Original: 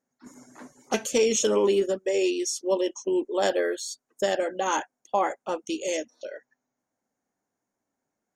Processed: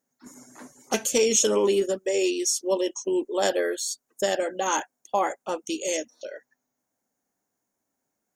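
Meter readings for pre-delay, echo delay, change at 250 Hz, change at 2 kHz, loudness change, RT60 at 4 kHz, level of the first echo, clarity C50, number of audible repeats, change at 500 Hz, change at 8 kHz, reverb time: no reverb, no echo, 0.0 dB, +0.5 dB, +1.0 dB, no reverb, no echo, no reverb, no echo, 0.0 dB, +5.5 dB, no reverb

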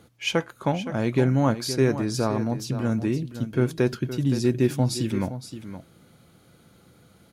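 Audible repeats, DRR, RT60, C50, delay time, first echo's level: 1, no reverb, no reverb, no reverb, 518 ms, -11.5 dB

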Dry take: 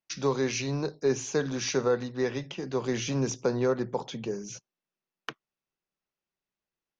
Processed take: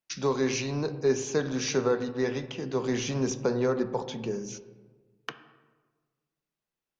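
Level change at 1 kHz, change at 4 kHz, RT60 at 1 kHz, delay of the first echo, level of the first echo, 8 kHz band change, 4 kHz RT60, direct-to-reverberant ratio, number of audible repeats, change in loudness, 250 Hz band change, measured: +0.5 dB, 0.0 dB, 1.3 s, no echo, no echo, no reading, 0.80 s, 10.0 dB, no echo, +0.5 dB, +1.5 dB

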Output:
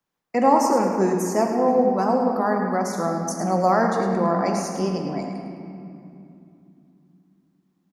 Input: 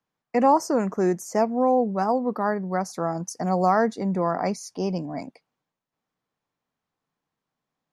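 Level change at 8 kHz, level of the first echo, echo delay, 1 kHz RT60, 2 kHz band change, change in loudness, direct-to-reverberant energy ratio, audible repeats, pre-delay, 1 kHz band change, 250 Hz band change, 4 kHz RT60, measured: +4.5 dB, -9.5 dB, 106 ms, 2.7 s, +3.0 dB, +2.5 dB, 1.0 dB, 1, 3 ms, +2.5 dB, +3.0 dB, 1.7 s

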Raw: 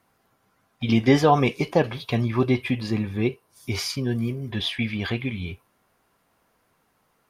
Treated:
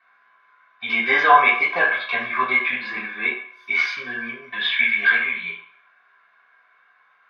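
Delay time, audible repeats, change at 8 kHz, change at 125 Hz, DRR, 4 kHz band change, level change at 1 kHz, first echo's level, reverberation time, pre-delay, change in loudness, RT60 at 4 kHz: no echo, no echo, under -10 dB, under -25 dB, -9.0 dB, +2.5 dB, +7.5 dB, no echo, 0.60 s, 3 ms, +5.0 dB, 0.60 s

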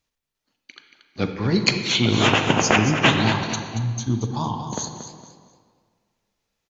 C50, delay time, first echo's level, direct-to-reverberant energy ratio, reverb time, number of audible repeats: 5.0 dB, 230 ms, -10.0 dB, 4.5 dB, 1.8 s, 3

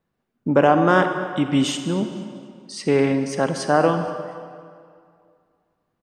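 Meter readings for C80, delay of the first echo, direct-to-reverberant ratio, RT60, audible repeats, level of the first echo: 8.5 dB, 237 ms, 7.0 dB, 2.3 s, 1, -20.0 dB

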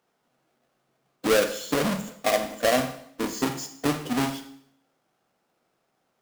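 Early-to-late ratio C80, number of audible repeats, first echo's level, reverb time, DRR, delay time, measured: 13.5 dB, no echo, no echo, 0.65 s, 7.0 dB, no echo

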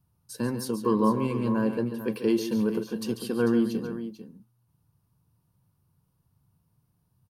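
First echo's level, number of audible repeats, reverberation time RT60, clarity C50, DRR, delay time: -10.5 dB, 2, no reverb, no reverb, no reverb, 141 ms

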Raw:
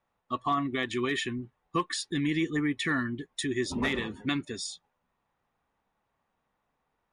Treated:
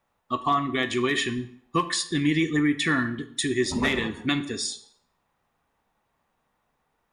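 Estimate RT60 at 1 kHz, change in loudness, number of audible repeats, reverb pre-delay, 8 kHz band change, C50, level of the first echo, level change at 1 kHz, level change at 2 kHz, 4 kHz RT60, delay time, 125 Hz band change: 0.65 s, +5.5 dB, no echo, 10 ms, +7.5 dB, 13.5 dB, no echo, +5.0 dB, +5.5 dB, 0.55 s, no echo, +5.0 dB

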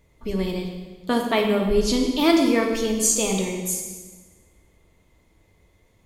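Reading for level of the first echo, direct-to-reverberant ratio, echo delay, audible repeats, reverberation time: no echo, 1.5 dB, no echo, no echo, 1.4 s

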